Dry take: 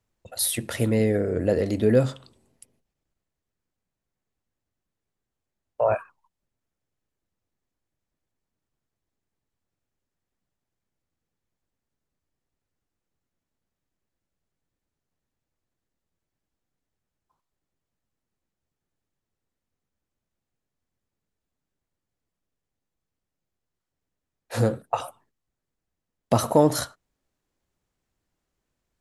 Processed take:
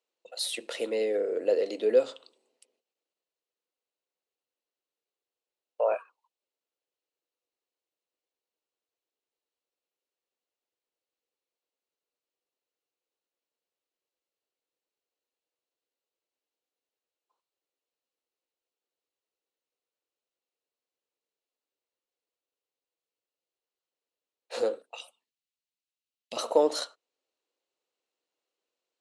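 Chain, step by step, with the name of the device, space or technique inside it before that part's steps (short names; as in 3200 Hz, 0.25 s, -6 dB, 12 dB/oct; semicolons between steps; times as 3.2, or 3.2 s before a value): phone speaker on a table (speaker cabinet 340–8900 Hz, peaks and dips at 490 Hz +7 dB, 1700 Hz -4 dB, 2800 Hz +7 dB, 4100 Hz +7 dB); 24.91–26.37 band shelf 710 Hz -16 dB 2.8 oct; gain -6.5 dB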